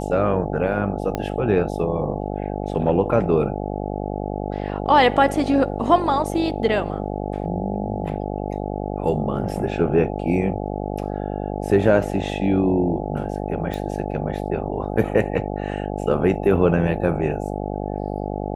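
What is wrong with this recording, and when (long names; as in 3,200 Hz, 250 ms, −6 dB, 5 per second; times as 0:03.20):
mains buzz 50 Hz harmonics 17 −27 dBFS
0:01.15: click −11 dBFS
0:13.74: click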